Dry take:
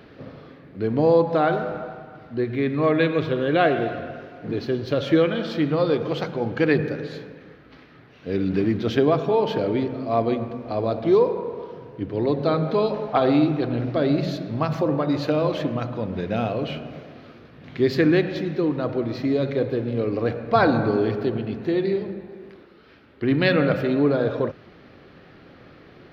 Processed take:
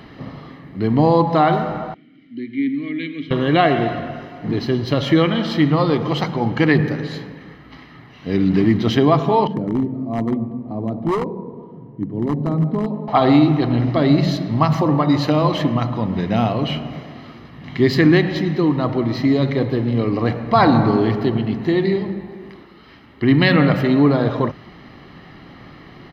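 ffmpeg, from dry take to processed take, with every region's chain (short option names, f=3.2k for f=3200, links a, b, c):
-filter_complex "[0:a]asettb=1/sr,asplit=3[a][b][c];[a]atrim=end=1.944[d];[b]atrim=start=1.94:end=3.31,asetpts=PTS-STARTPTS,afade=t=in:d=0.004:c=qsin,afade=t=out:st=1.366:d=0.004:c=qsin,asplit=3[e][f][g];[e]bandpass=f=270:t=q:w=8,volume=0dB[h];[f]bandpass=f=2.29k:t=q:w=8,volume=-6dB[i];[g]bandpass=f=3.01k:t=q:w=8,volume=-9dB[j];[h][i][j]amix=inputs=3:normalize=0,highshelf=f=4.3k:g=10[k];[c]atrim=start=3.306[l];[d][k]acrossfade=d=0.004:c1=hsin:c2=qsin[m];[m][l]acrossfade=d=0.004:c1=qsin:c2=hsin,asettb=1/sr,asplit=3[n][o][p];[n]atrim=end=9.474[q];[o]atrim=start=9.47:end=13.08,asetpts=PTS-STARTPTS,afade=t=in:d=0.004:c=qsin,afade=t=out:st=3.606:d=0.004:c=qsin,bandpass=f=200:t=q:w=1.1,aeval=exprs='0.112*(abs(mod(val(0)/0.112+3,4)-2)-1)':c=same[r];[p]atrim=start=13.076[s];[q][r]acrossfade=d=0.004:c1=hsin:c2=qsin[t];[t][s]acrossfade=d=0.004:c1=qsin:c2=hsin,equalizer=f=89:t=o:w=0.48:g=-5.5,aecho=1:1:1:0.56,alimiter=level_in=9dB:limit=-1dB:release=50:level=0:latency=1,volume=-2.5dB"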